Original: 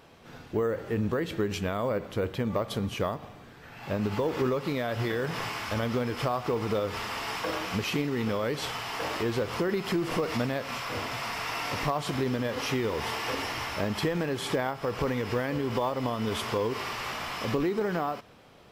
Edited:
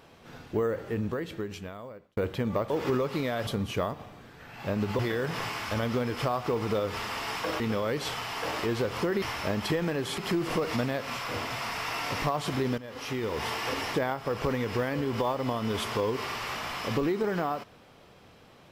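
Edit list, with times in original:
0.64–2.17 s: fade out
4.22–4.99 s: move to 2.70 s
7.60–8.17 s: delete
12.39–13.04 s: fade in, from -16 dB
13.55–14.51 s: move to 9.79 s

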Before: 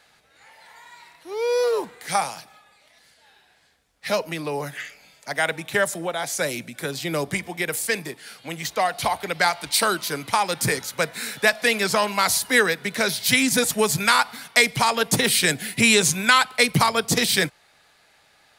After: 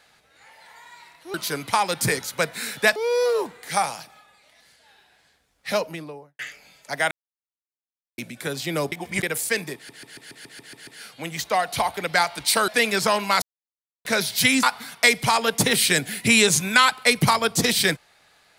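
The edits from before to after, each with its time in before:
4.08–4.77 s: studio fade out
5.49–6.56 s: mute
7.30–7.61 s: reverse
8.13 s: stutter 0.14 s, 9 plays
9.94–11.56 s: move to 1.34 s
12.30–12.93 s: mute
13.51–14.16 s: delete

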